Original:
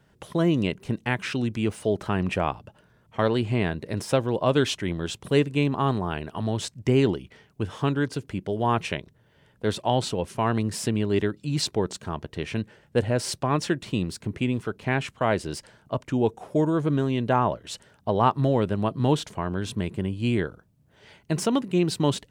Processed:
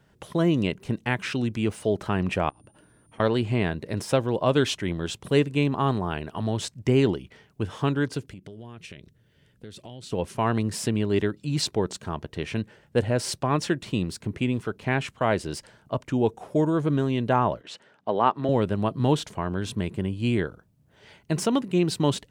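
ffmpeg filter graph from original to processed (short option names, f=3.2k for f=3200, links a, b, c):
-filter_complex "[0:a]asettb=1/sr,asplit=3[a][b][c];[a]atrim=end=2.494[d];[b]atrim=start=2.49:end=3.2,asetpts=PTS-STARTPTS,afade=t=in:d=0.004:c=qsin,afade=t=out:st=0.706:d=0.004:c=qsin,equalizer=f=300:t=o:w=0.36:g=11.5,acompressor=threshold=-47dB:ratio=16:attack=3.2:release=140:knee=1:detection=peak,aeval=exprs='val(0)+0.000562*sin(2*PI*9200*n/s)':c=same[e];[c]atrim=start=3.196[f];[d][e]acrossfade=d=0.004:c1=hsin:c2=qsin[g];[g][f]acrossfade=d=0.004:c1=qsin:c2=hsin,asettb=1/sr,asplit=3[h][i][j];[h]atrim=end=8.264[k];[i]atrim=start=8.26:end=10.12,asetpts=PTS-STARTPTS,afade=t=in:d=0.004:c=qsin,afade=t=out:st=1.856:d=0.004:c=qsin,equalizer=f=890:t=o:w=1.4:g=-12.5,acompressor=threshold=-38dB:ratio=8:attack=3.2:release=140:knee=1:detection=peak[l];[j]atrim=start=10.116[m];[k][l]acrossfade=d=0.004:c1=hsin:c2=qsin[n];[n][m]acrossfade=d=0.004:c1=qsin:c2=hsin,asettb=1/sr,asplit=3[o][p][q];[o]atrim=end=17.614[r];[p]atrim=start=17.61:end=18.49,asetpts=PTS-STARTPTS,afade=t=in:d=0.004:c=qsin,afade=t=out:st=0.876:d=0.004:c=qsin,highpass=230,lowpass=2.4k,aemphasis=mode=production:type=75fm[s];[q]atrim=start=18.486[t];[r][s]acrossfade=d=0.004:c1=hsin:c2=qsin[u];[u][t]acrossfade=d=0.004:c1=qsin:c2=hsin"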